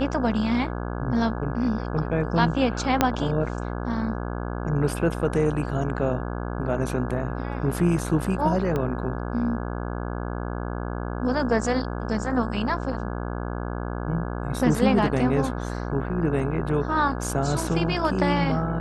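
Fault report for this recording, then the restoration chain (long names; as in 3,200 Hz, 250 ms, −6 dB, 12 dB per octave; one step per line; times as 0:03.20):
mains buzz 60 Hz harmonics 28 −30 dBFS
0:03.01: click −3 dBFS
0:08.76: click −15 dBFS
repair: click removal
hum removal 60 Hz, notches 28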